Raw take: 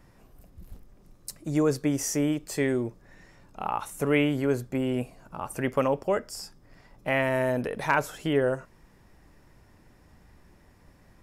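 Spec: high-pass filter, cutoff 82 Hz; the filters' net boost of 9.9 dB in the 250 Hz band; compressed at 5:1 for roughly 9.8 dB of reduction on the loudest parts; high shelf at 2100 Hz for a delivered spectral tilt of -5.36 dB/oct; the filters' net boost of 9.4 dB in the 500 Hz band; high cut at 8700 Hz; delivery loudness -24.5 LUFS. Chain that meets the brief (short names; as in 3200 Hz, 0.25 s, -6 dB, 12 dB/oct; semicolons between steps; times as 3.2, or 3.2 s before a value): HPF 82 Hz; LPF 8700 Hz; bell 250 Hz +9 dB; bell 500 Hz +8.5 dB; high shelf 2100 Hz +4 dB; compressor 5:1, threshold -21 dBFS; gain +2.5 dB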